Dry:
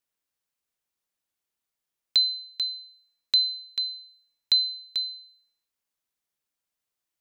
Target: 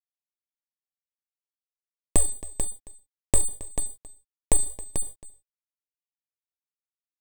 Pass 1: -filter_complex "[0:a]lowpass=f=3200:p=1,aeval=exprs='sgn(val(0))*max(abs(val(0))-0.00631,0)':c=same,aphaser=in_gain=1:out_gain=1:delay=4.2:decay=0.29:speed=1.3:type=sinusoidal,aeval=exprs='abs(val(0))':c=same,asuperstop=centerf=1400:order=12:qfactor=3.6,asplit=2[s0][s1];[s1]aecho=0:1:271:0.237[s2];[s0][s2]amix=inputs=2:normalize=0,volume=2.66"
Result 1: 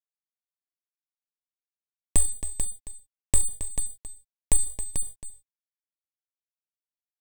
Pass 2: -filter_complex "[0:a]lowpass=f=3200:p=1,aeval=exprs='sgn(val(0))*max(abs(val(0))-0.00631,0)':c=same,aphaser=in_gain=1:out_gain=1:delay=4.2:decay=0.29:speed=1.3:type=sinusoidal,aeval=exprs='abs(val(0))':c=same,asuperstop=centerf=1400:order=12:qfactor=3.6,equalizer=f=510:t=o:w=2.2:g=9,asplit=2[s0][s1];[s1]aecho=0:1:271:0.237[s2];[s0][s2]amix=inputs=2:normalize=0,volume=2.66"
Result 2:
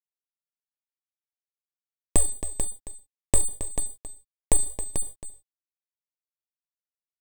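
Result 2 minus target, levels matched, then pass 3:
echo-to-direct +6.5 dB
-filter_complex "[0:a]lowpass=f=3200:p=1,aeval=exprs='sgn(val(0))*max(abs(val(0))-0.00631,0)':c=same,aphaser=in_gain=1:out_gain=1:delay=4.2:decay=0.29:speed=1.3:type=sinusoidal,aeval=exprs='abs(val(0))':c=same,asuperstop=centerf=1400:order=12:qfactor=3.6,equalizer=f=510:t=o:w=2.2:g=9,asplit=2[s0][s1];[s1]aecho=0:1:271:0.112[s2];[s0][s2]amix=inputs=2:normalize=0,volume=2.66"

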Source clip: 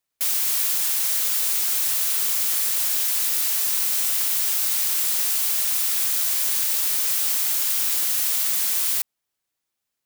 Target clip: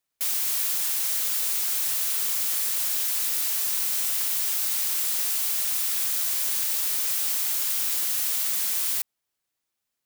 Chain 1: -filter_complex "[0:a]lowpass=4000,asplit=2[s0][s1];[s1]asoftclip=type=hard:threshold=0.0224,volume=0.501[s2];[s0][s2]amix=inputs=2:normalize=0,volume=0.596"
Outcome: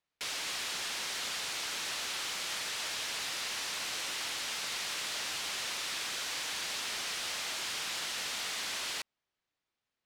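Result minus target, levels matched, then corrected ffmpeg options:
4 kHz band +10.5 dB
-filter_complex "[0:a]asplit=2[s0][s1];[s1]asoftclip=type=hard:threshold=0.0224,volume=0.501[s2];[s0][s2]amix=inputs=2:normalize=0,volume=0.596"

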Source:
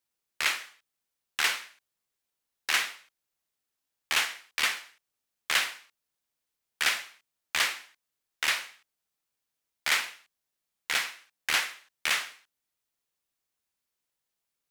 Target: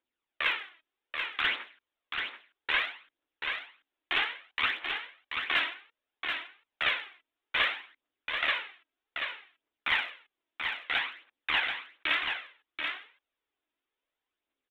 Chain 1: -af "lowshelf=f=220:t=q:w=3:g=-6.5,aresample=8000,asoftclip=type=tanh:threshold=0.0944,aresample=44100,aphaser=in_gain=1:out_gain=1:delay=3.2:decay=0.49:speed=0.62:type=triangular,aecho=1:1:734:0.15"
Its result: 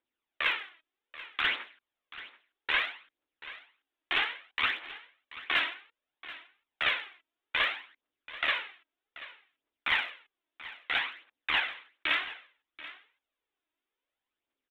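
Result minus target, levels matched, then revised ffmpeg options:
echo-to-direct -11 dB
-af "lowshelf=f=220:t=q:w=3:g=-6.5,aresample=8000,asoftclip=type=tanh:threshold=0.0944,aresample=44100,aphaser=in_gain=1:out_gain=1:delay=3.2:decay=0.49:speed=0.62:type=triangular,aecho=1:1:734:0.531"

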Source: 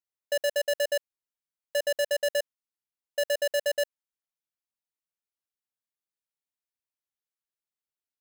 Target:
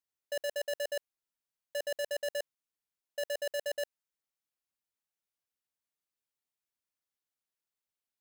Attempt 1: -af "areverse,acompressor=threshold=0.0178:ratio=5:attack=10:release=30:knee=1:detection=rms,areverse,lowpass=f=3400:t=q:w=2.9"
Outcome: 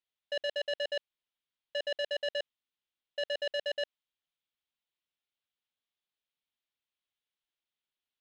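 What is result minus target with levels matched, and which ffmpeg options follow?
4 kHz band +5.0 dB
-af "areverse,acompressor=threshold=0.0178:ratio=5:attack=10:release=30:knee=1:detection=rms,areverse"

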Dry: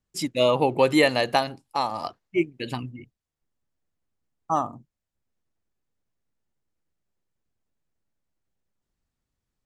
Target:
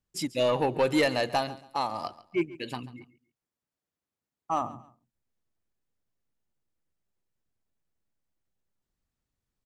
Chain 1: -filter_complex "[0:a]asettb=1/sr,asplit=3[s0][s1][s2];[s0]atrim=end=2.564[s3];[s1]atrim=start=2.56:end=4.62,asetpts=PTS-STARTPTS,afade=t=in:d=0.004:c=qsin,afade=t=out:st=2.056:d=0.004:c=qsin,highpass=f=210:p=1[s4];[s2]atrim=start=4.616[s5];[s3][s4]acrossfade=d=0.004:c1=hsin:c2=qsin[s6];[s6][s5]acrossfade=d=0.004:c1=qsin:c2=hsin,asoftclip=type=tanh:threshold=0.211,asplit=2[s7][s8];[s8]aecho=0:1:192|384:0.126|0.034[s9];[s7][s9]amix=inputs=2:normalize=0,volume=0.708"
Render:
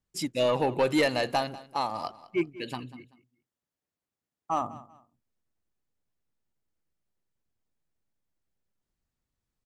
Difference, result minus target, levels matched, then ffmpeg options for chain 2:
echo 54 ms late
-filter_complex "[0:a]asettb=1/sr,asplit=3[s0][s1][s2];[s0]atrim=end=2.564[s3];[s1]atrim=start=2.56:end=4.62,asetpts=PTS-STARTPTS,afade=t=in:d=0.004:c=qsin,afade=t=out:st=2.056:d=0.004:c=qsin,highpass=f=210:p=1[s4];[s2]atrim=start=4.616[s5];[s3][s4]acrossfade=d=0.004:c1=hsin:c2=qsin[s6];[s6][s5]acrossfade=d=0.004:c1=qsin:c2=hsin,asoftclip=type=tanh:threshold=0.211,asplit=2[s7][s8];[s8]aecho=0:1:138|276:0.126|0.034[s9];[s7][s9]amix=inputs=2:normalize=0,volume=0.708"

